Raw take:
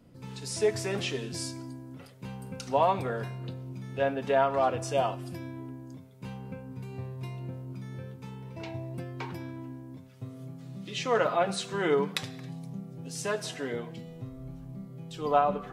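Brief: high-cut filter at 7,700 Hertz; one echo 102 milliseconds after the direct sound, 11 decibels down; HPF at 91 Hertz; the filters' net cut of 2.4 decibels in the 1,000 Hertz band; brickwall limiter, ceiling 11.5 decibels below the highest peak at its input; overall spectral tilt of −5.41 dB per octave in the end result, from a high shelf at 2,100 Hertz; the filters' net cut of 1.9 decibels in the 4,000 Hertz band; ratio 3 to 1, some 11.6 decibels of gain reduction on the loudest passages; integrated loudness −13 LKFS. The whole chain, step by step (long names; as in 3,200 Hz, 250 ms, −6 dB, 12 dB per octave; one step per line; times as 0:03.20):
high-pass filter 91 Hz
low-pass filter 7,700 Hz
parametric band 1,000 Hz −4 dB
high-shelf EQ 2,100 Hz +3.5 dB
parametric band 4,000 Hz −5.5 dB
downward compressor 3 to 1, threshold −37 dBFS
brickwall limiter −31.5 dBFS
single-tap delay 102 ms −11 dB
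level +28.5 dB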